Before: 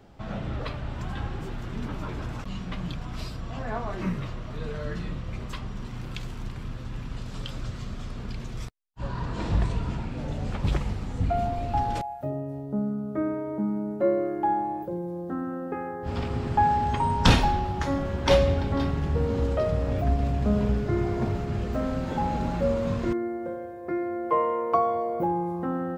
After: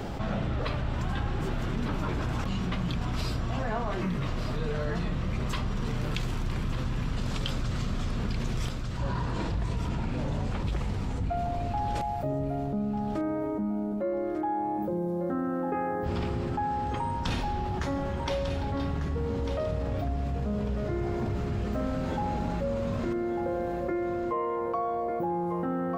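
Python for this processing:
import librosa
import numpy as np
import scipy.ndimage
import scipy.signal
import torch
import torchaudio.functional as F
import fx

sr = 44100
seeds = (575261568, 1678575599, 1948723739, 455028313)

p1 = fx.rider(x, sr, range_db=10, speed_s=0.5)
p2 = p1 + fx.echo_feedback(p1, sr, ms=1197, feedback_pct=25, wet_db=-11.0, dry=0)
p3 = fx.env_flatten(p2, sr, amount_pct=70)
y = F.gain(torch.from_numpy(p3), -8.0).numpy()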